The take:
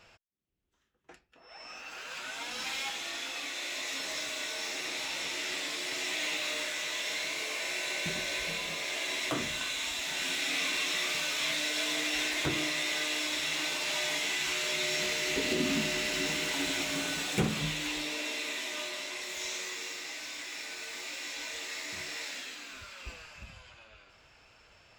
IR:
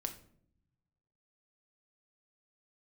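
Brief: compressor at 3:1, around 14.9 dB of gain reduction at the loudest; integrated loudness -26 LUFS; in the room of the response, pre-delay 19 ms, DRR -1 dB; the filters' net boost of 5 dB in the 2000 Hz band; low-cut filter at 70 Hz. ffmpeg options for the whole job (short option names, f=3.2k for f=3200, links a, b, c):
-filter_complex "[0:a]highpass=70,equalizer=f=2k:t=o:g=6,acompressor=threshold=-45dB:ratio=3,asplit=2[a][b];[1:a]atrim=start_sample=2205,adelay=19[c];[b][c]afir=irnorm=-1:irlink=0,volume=2dB[d];[a][d]amix=inputs=2:normalize=0,volume=12dB"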